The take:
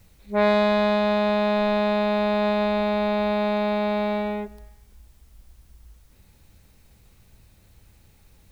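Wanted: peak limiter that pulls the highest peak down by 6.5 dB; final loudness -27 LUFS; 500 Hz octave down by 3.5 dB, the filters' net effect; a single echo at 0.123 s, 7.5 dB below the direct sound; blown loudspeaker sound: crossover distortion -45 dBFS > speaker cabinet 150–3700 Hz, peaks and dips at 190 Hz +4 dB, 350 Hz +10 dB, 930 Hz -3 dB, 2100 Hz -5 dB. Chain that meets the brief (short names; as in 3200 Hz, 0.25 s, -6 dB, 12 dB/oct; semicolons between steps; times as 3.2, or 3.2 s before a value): bell 500 Hz -6 dB; limiter -16 dBFS; echo 0.123 s -7.5 dB; crossover distortion -45 dBFS; speaker cabinet 150–3700 Hz, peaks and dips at 190 Hz +4 dB, 350 Hz +10 dB, 930 Hz -3 dB, 2100 Hz -5 dB; gain -0.5 dB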